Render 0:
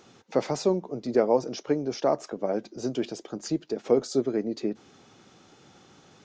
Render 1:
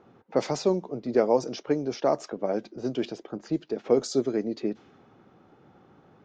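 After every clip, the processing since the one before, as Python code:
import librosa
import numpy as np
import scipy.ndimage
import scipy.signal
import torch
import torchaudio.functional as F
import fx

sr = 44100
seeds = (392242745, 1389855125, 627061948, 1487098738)

y = fx.env_lowpass(x, sr, base_hz=1200.0, full_db=-19.0)
y = fx.high_shelf(y, sr, hz=5100.0, db=8.0)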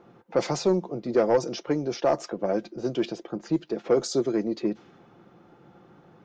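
y = x + 0.37 * np.pad(x, (int(5.8 * sr / 1000.0), 0))[:len(x)]
y = 10.0 ** (-14.5 / 20.0) * np.tanh(y / 10.0 ** (-14.5 / 20.0))
y = F.gain(torch.from_numpy(y), 2.0).numpy()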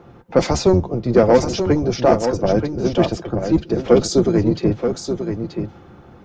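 y = fx.octave_divider(x, sr, octaves=1, level_db=0.0)
y = y + 10.0 ** (-7.5 / 20.0) * np.pad(y, (int(930 * sr / 1000.0), 0))[:len(y)]
y = F.gain(torch.from_numpy(y), 8.0).numpy()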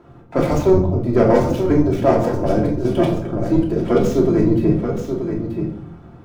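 y = scipy.ndimage.median_filter(x, 9, mode='constant')
y = fx.room_shoebox(y, sr, seeds[0], volume_m3=880.0, walls='furnished', distance_m=2.9)
y = F.gain(torch.from_numpy(y), -4.5).numpy()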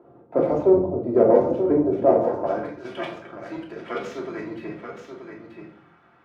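y = fx.filter_sweep_bandpass(x, sr, from_hz=500.0, to_hz=1900.0, start_s=2.18, end_s=2.84, q=1.3)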